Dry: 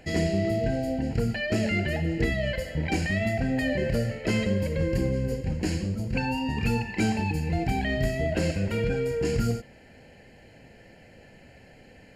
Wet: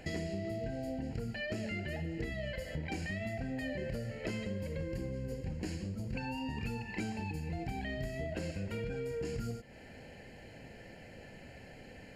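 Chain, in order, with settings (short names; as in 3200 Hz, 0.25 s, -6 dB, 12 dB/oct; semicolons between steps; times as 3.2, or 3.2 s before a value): compressor, threshold -36 dBFS, peak gain reduction 14.5 dB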